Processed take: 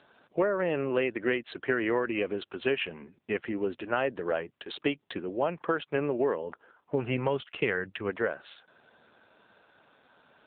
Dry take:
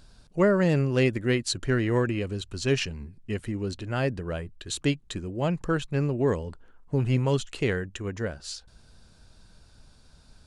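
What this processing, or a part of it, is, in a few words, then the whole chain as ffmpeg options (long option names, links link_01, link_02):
voicemail: -filter_complex "[0:a]asettb=1/sr,asplit=3[link_01][link_02][link_03];[link_01]atrim=end=6.424[link_04];[link_02]atrim=start=6.42:end=8.09,asetpts=PTS-STARTPTS,afade=type=in:duration=0.004:curve=qsin,afade=type=out:start_time=1.666:duration=0.004:curve=qsin,asubboost=boost=7.5:cutoff=150[link_05];[link_03]atrim=start=8.086[link_06];[link_04][link_05]acrossfade=duration=0.004:curve1=hsin:curve2=qsin[link_07];[link_07][link_06]acrossfade=duration=0.004:curve1=qsin:curve2=hsin,highpass=430,lowpass=2800,acompressor=threshold=-31dB:ratio=10,volume=8.5dB" -ar 8000 -c:a libopencore_amrnb -b:a 7400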